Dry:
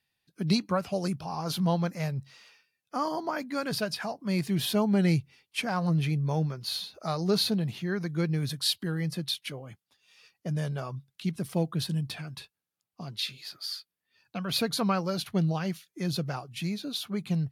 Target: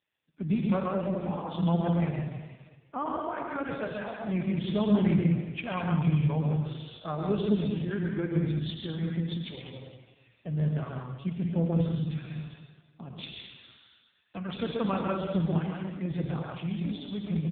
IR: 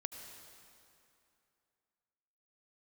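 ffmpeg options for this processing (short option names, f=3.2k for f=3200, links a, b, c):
-filter_complex "[0:a]aecho=1:1:132|185|209|211:0.631|0.376|0.299|0.133[a];[1:a]atrim=start_sample=2205,asetrate=79380,aresample=44100[b];[a][b]afir=irnorm=-1:irlink=0,volume=6dB" -ar 8000 -c:a libopencore_amrnb -b:a 5150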